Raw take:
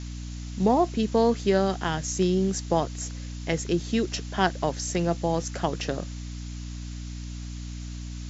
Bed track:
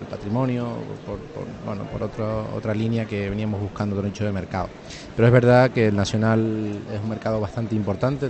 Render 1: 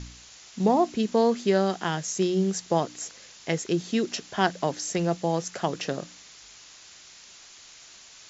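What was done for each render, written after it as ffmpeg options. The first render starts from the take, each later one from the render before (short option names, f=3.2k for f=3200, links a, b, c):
-af "bandreject=f=60:t=h:w=4,bandreject=f=120:t=h:w=4,bandreject=f=180:t=h:w=4,bandreject=f=240:t=h:w=4,bandreject=f=300:t=h:w=4"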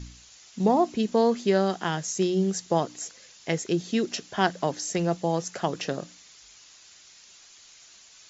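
-af "afftdn=nr=6:nf=-50"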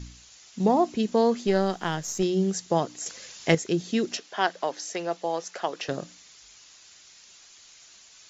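-filter_complex "[0:a]asettb=1/sr,asplit=3[a][b][c];[a]atrim=end=1.474[d];[b]atrim=start=1.47:end=2.23,asetpts=PTS-STARTPTS,afade=t=in:d=0.004:c=qsin,afade=t=out:st=0.756:d=0.004:c=qsin,aeval=exprs='if(lt(val(0),0),0.708*val(0),val(0))':c=same[e];[c]atrim=start=2.226[f];[d][e]acrossfade=d=0.004:c1=hsin:c2=qsin[g];[g][f]acrossfade=d=0.004:c1=qsin:c2=hsin,asettb=1/sr,asplit=3[h][i][j];[h]atrim=end=3.064[k];[i]atrim=start=3.06:end=3.55,asetpts=PTS-STARTPTS,afade=t=in:d=0.004:c=qsin,afade=t=out:st=0.486:d=0.004:c=qsin,acontrast=86[l];[j]atrim=start=3.546[m];[k][l]acrossfade=d=0.004:c1=hsin:c2=qsin[n];[n][m]acrossfade=d=0.004:c1=qsin:c2=hsin,asettb=1/sr,asplit=3[o][p][q];[o]atrim=end=4.174[r];[p]atrim=start=4.17:end=5.89,asetpts=PTS-STARTPTS,afade=t=in:d=0.004:c=qsin,afade=t=out:st=1.716:d=0.004:c=qsin,highpass=440,lowpass=5.9k[s];[q]atrim=start=5.886[t];[r][s]acrossfade=d=0.004:c1=hsin:c2=qsin[u];[u][t]acrossfade=d=0.004:c1=qsin:c2=hsin"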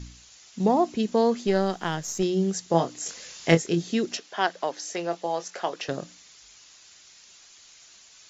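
-filter_complex "[0:a]asettb=1/sr,asplit=3[a][b][c];[a]atrim=end=2.714[d];[b]atrim=start=2.71:end=3.95,asetpts=PTS-STARTPTS,afade=t=in:d=0.004:c=qsin,afade=t=out:st=1.236:d=0.004:c=qsin,asplit=2[e][f];[f]adelay=24,volume=-5dB[g];[e][g]amix=inputs=2:normalize=0,atrim=end_sample=54684[h];[c]atrim=start=3.946[i];[d][h]acrossfade=d=0.004:c1=hsin:c2=qsin[j];[j][i]acrossfade=d=0.004:c1=qsin:c2=hsin,asettb=1/sr,asplit=3[k][l][m];[k]atrim=end=4.814[n];[l]atrim=start=4.81:end=5.74,asetpts=PTS-STARTPTS,afade=t=in:d=0.004:c=qsin,afade=t=out:st=0.926:d=0.004:c=qsin,asplit=2[o][p];[p]adelay=23,volume=-10dB[q];[o][q]amix=inputs=2:normalize=0,atrim=end_sample=41013[r];[m]atrim=start=5.736[s];[n][r]acrossfade=d=0.004:c1=hsin:c2=qsin[t];[t][s]acrossfade=d=0.004:c1=qsin:c2=hsin"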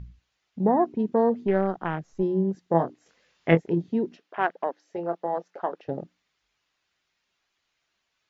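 -af "afwtdn=0.0251,lowpass=2.6k"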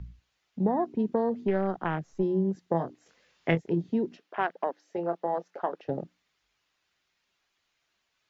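-filter_complex "[0:a]acrossover=split=130|3000[a][b][c];[b]acompressor=threshold=-23dB:ratio=6[d];[a][d][c]amix=inputs=3:normalize=0"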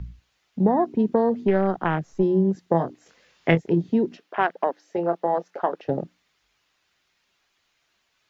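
-af "volume=6.5dB"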